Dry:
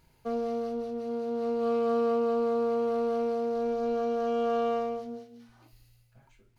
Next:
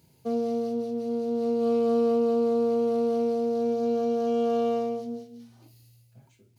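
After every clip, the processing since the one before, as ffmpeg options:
ffmpeg -i in.wav -af "highpass=frequency=92:width=0.5412,highpass=frequency=92:width=1.3066,equalizer=frequency=1400:width_type=o:width=2:gain=-14,volume=7dB" out.wav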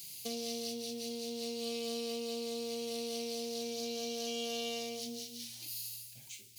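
ffmpeg -i in.wav -af "acompressor=threshold=-35dB:ratio=3,aexciter=amount=14.6:drive=6.7:freq=2100,volume=-6.5dB" out.wav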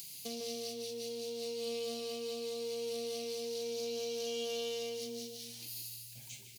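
ffmpeg -i in.wav -filter_complex "[0:a]acompressor=mode=upward:threshold=-41dB:ratio=2.5,asplit=2[link_01][link_02];[link_02]adelay=152,lowpass=frequency=2100:poles=1,volume=-3.5dB,asplit=2[link_03][link_04];[link_04]adelay=152,lowpass=frequency=2100:poles=1,volume=0.33,asplit=2[link_05][link_06];[link_06]adelay=152,lowpass=frequency=2100:poles=1,volume=0.33,asplit=2[link_07][link_08];[link_08]adelay=152,lowpass=frequency=2100:poles=1,volume=0.33[link_09];[link_01][link_03][link_05][link_07][link_09]amix=inputs=5:normalize=0,volume=-2.5dB" out.wav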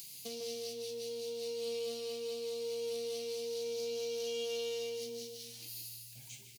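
ffmpeg -i in.wav -filter_complex "[0:a]asplit=2[link_01][link_02];[link_02]adelay=15,volume=-8dB[link_03];[link_01][link_03]amix=inputs=2:normalize=0,volume=-2dB" out.wav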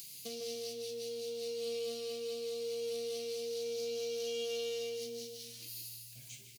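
ffmpeg -i in.wav -af "asuperstop=centerf=840:order=12:qfactor=3.9" out.wav

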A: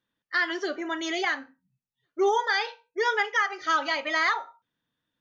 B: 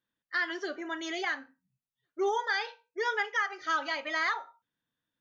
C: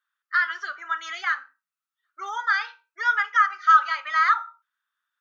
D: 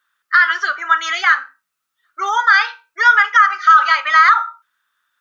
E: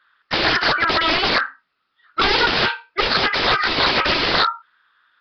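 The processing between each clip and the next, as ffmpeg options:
ffmpeg -i in.wav -af "equalizer=frequency=1600:width=5.9:gain=3,volume=-6dB" out.wav
ffmpeg -i in.wav -af "highpass=frequency=1300:width_type=q:width=6.6" out.wav
ffmpeg -i in.wav -af "alimiter=level_in=14.5dB:limit=-1dB:release=50:level=0:latency=1,volume=-1dB" out.wav
ffmpeg -i in.wav -af "aeval=exprs='(mod(7.94*val(0)+1,2)-1)/7.94':channel_layout=same,equalizer=frequency=370:width_type=o:width=1.5:gain=4,volume=9dB" -ar 11025 -c:a nellymoser out.flv

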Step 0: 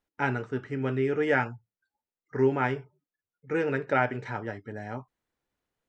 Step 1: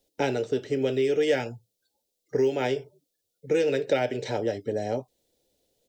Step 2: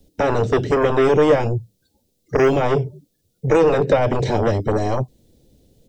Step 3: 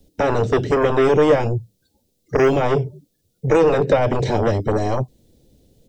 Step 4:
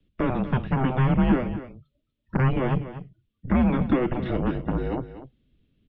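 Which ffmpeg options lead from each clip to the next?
ffmpeg -i in.wav -filter_complex "[0:a]firequalizer=gain_entry='entry(160,0);entry(530,11);entry(1100,-16);entry(3600,9)':delay=0.05:min_phase=1,acrossover=split=310|1200[link_01][link_02][link_03];[link_01]acompressor=threshold=-42dB:ratio=4[link_04];[link_02]acompressor=threshold=-33dB:ratio=4[link_05];[link_03]acompressor=threshold=-36dB:ratio=4[link_06];[link_04][link_05][link_06]amix=inputs=3:normalize=0,volume=7dB" out.wav
ffmpeg -i in.wav -filter_complex "[0:a]acrossover=split=250|760|1200[link_01][link_02][link_03][link_04];[link_01]aeval=exprs='0.0531*sin(PI/2*6.31*val(0)/0.0531)':channel_layout=same[link_05];[link_04]alimiter=level_in=7dB:limit=-24dB:level=0:latency=1:release=283,volume=-7dB[link_06];[link_05][link_02][link_03][link_06]amix=inputs=4:normalize=0,volume=8dB" out.wav
ffmpeg -i in.wav -af anull out.wav
ffmpeg -i in.wav -af "aecho=1:1:243:0.224,highpass=frequency=180:width_type=q:width=0.5412,highpass=frequency=180:width_type=q:width=1.307,lowpass=frequency=3500:width_type=q:width=0.5176,lowpass=frequency=3500:width_type=q:width=0.7071,lowpass=frequency=3500:width_type=q:width=1.932,afreqshift=-260,volume=-5.5dB" out.wav

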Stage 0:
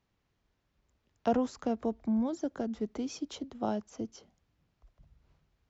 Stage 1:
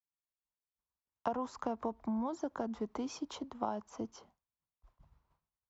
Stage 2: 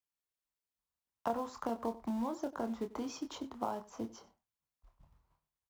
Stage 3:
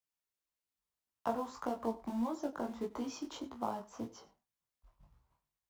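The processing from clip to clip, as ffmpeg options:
ffmpeg -i in.wav -af "agate=range=-33dB:threshold=-58dB:ratio=3:detection=peak,equalizer=frequency=1000:width=1.6:gain=14.5,acompressor=threshold=-28dB:ratio=6,volume=-3.5dB" out.wav
ffmpeg -i in.wav -filter_complex "[0:a]asplit=2[link_01][link_02];[link_02]acrusher=bits=3:mode=log:mix=0:aa=0.000001,volume=-6dB[link_03];[link_01][link_03]amix=inputs=2:normalize=0,asplit=2[link_04][link_05];[link_05]adelay=26,volume=-7.5dB[link_06];[link_04][link_06]amix=inputs=2:normalize=0,asplit=2[link_07][link_08];[link_08]adelay=93.29,volume=-18dB,highshelf=frequency=4000:gain=-2.1[link_09];[link_07][link_09]amix=inputs=2:normalize=0,volume=-4.5dB" out.wav
ffmpeg -i in.wav -af "flanger=delay=15.5:depth=5.3:speed=1.7,volume=2.5dB" out.wav

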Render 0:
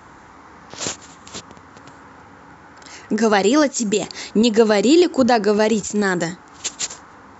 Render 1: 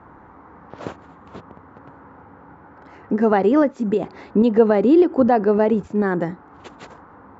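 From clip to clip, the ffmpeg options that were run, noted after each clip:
ffmpeg -i in.wav -af "lowpass=1200" out.wav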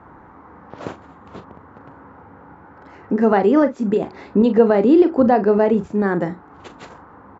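ffmpeg -i in.wav -filter_complex "[0:a]asplit=2[link_01][link_02];[link_02]adelay=40,volume=-11dB[link_03];[link_01][link_03]amix=inputs=2:normalize=0,volume=1dB" out.wav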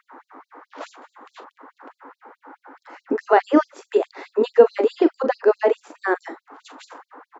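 ffmpeg -i in.wav -af "afftfilt=real='re*gte(b*sr/1024,220*pow(4000/220,0.5+0.5*sin(2*PI*4.7*pts/sr)))':imag='im*gte(b*sr/1024,220*pow(4000/220,0.5+0.5*sin(2*PI*4.7*pts/sr)))':win_size=1024:overlap=0.75,volume=2.5dB" out.wav

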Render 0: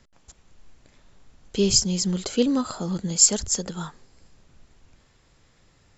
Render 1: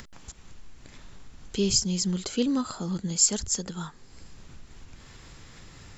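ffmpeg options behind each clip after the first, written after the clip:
ffmpeg -i in.wav -filter_complex "[0:a]equalizer=frequency=590:width_type=o:width=0.92:gain=-5,asplit=2[link_01][link_02];[link_02]alimiter=limit=-14dB:level=0:latency=1:release=100,volume=-3dB[link_03];[link_01][link_03]amix=inputs=2:normalize=0,acompressor=mode=upward:threshold=-26dB:ratio=2.5,volume=-7dB" out.wav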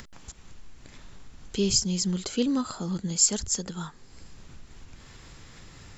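ffmpeg -i in.wav -af anull out.wav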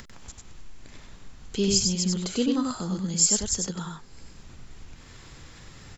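ffmpeg -i in.wav -af "aecho=1:1:96:0.668" out.wav

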